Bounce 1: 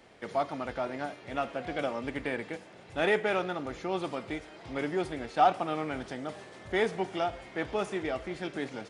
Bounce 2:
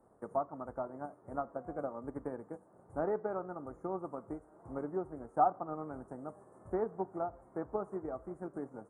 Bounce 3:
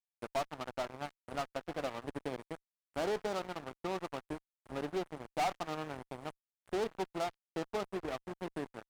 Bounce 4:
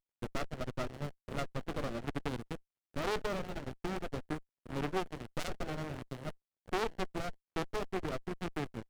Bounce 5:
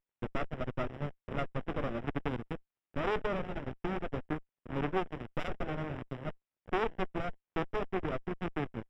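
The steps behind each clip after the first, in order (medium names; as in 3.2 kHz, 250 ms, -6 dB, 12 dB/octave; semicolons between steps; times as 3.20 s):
transient shaper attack +6 dB, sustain -3 dB; Chebyshev band-stop 1.2–8.9 kHz, order 3; low-pass that closes with the level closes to 2.8 kHz, closed at -23 dBFS; trim -7.5 dB
crossover distortion -45.5 dBFS; treble shelf 2 kHz +10 dB; valve stage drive 35 dB, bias 0.3; trim +6 dB
sliding maximum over 33 samples; trim +6.5 dB
Savitzky-Golay filter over 25 samples; trim +2.5 dB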